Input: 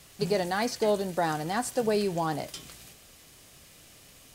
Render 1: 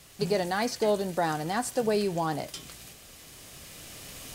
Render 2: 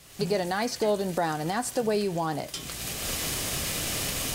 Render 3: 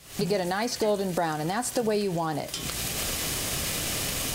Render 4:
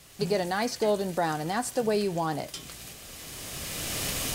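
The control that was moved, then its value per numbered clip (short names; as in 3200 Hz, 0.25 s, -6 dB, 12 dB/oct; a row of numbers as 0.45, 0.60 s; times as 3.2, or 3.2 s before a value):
recorder AGC, rising by: 5.7, 36, 90, 14 dB/s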